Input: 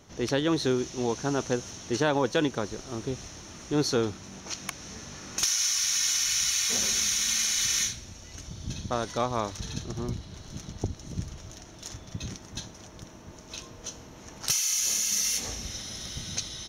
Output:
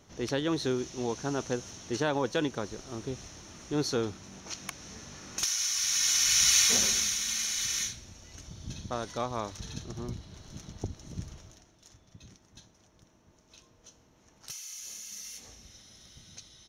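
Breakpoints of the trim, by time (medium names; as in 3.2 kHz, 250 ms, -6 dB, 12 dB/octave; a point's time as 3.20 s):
5.69 s -4 dB
6.58 s +5 dB
7.21 s -5 dB
11.35 s -5 dB
11.76 s -16 dB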